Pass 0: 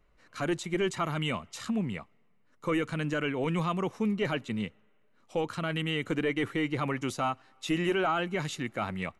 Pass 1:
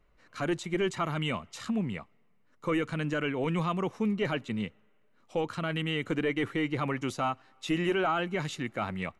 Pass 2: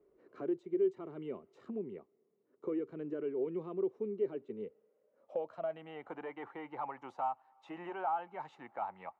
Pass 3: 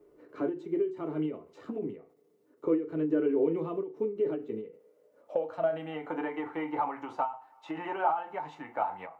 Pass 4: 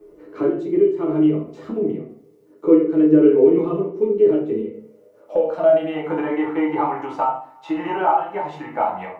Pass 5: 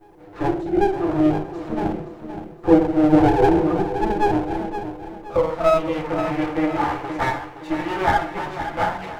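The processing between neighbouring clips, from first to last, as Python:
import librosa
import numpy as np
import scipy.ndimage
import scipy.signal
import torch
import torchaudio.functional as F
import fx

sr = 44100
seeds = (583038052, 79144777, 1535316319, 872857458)

y1 = fx.high_shelf(x, sr, hz=7800.0, db=-6.0)
y2 = fx.filter_sweep_bandpass(y1, sr, from_hz=390.0, to_hz=850.0, start_s=4.42, end_s=6.22, q=7.4)
y2 = fx.band_squash(y2, sr, depth_pct=40)
y2 = y2 * 10.0 ** (3.5 / 20.0)
y3 = fx.rev_fdn(y2, sr, rt60_s=0.3, lf_ratio=0.9, hf_ratio=0.8, size_ms=20.0, drr_db=3.0)
y3 = fx.end_taper(y3, sr, db_per_s=130.0)
y3 = y3 * 10.0 ** (8.0 / 20.0)
y4 = fx.room_shoebox(y3, sr, seeds[0], volume_m3=42.0, walls='mixed', distance_m=0.76)
y4 = y4 * 10.0 ** (6.5 / 20.0)
y5 = fx.lower_of_two(y4, sr, delay_ms=5.8)
y5 = fx.echo_feedback(y5, sr, ms=519, feedback_pct=39, wet_db=-10.0)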